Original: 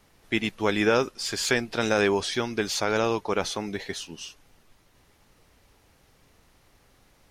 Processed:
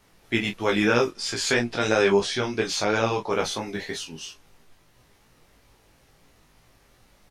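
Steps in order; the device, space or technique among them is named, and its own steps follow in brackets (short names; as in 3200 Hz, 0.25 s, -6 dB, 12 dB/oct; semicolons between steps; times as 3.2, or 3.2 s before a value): 1.11–3.31 LPF 9500 Hz 12 dB/oct; double-tracked vocal (doubler 25 ms -7 dB; chorus 3 Hz, delay 17 ms, depth 3 ms); gain +4 dB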